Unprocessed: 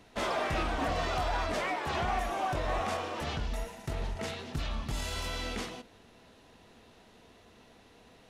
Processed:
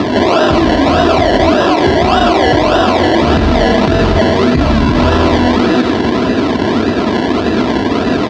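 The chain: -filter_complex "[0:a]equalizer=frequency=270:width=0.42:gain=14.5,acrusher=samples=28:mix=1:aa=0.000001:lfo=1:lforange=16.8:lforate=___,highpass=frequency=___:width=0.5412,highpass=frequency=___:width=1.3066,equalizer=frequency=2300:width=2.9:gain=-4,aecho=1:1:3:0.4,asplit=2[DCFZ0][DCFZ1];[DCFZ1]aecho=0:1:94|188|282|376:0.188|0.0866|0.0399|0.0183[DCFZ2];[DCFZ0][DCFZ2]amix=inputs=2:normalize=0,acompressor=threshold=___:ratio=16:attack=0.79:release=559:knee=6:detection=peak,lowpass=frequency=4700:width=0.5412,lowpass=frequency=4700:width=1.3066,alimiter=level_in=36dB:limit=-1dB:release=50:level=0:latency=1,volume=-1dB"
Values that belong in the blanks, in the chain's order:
1.7, 59, 59, -30dB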